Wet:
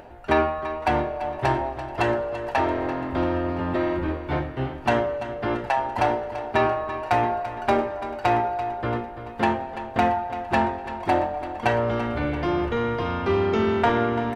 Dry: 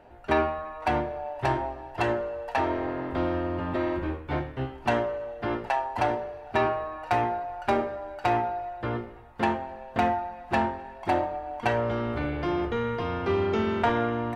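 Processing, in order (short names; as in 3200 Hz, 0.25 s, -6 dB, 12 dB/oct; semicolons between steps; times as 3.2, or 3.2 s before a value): upward compressor, threshold -43 dBFS; on a send: feedback echo 0.338 s, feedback 53%, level -12.5 dB; on the sum: gain +3.5 dB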